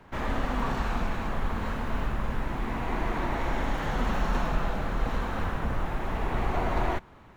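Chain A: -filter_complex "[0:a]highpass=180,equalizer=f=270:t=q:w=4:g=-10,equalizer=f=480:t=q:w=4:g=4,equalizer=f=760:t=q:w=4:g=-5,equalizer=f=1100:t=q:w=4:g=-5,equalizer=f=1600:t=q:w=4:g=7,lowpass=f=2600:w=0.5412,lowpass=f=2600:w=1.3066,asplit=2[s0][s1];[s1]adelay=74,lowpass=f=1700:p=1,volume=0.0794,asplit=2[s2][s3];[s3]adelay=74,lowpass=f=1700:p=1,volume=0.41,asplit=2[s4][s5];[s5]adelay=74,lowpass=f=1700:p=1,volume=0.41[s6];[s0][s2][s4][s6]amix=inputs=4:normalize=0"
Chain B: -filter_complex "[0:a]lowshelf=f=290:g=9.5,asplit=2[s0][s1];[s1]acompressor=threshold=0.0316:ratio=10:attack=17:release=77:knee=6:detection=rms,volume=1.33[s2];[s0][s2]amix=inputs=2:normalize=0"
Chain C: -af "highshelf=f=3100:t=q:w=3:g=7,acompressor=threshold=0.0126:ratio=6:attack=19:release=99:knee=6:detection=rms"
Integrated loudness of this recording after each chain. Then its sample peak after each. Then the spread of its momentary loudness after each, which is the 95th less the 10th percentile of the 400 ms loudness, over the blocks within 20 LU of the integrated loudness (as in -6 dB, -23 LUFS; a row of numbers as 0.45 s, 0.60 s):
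-33.5 LUFS, -23.0 LUFS, -42.5 LUFS; -19.5 dBFS, -5.0 dBFS, -27.5 dBFS; 4 LU, 3 LU, 2 LU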